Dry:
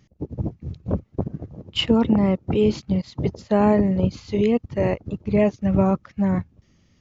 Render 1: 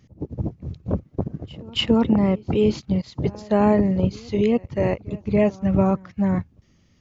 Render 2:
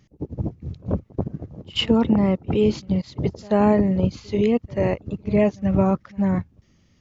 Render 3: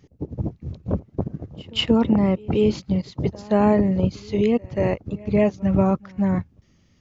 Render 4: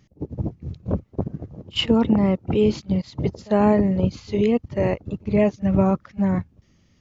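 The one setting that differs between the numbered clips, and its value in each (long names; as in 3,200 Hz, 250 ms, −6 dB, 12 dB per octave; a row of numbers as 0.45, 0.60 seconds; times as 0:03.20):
echo ahead of the sound, delay time: 283, 86, 183, 52 milliseconds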